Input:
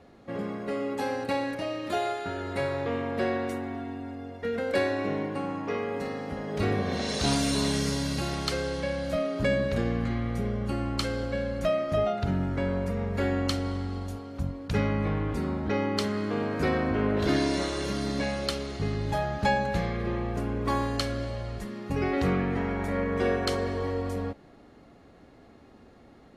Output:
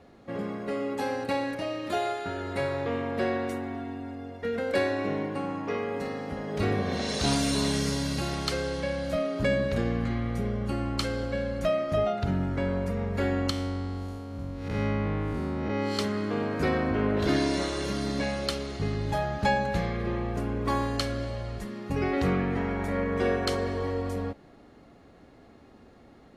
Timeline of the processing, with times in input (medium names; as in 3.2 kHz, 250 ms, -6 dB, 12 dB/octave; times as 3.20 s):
13.50–15.99 s: spectral blur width 200 ms